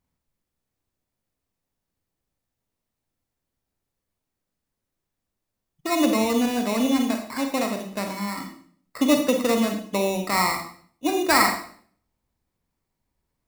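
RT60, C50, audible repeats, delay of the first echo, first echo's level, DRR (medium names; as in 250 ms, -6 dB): 0.55 s, 7.0 dB, no echo, no echo, no echo, 4.5 dB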